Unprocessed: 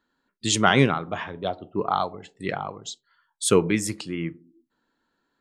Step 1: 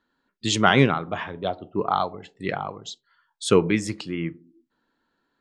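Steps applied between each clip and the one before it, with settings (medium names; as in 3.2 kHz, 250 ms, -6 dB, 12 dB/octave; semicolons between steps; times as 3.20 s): low-pass 5.6 kHz 12 dB/octave; trim +1 dB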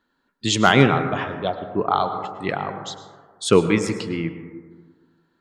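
overload inside the chain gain 4.5 dB; plate-style reverb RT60 1.6 s, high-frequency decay 0.25×, pre-delay 90 ms, DRR 9 dB; trim +2.5 dB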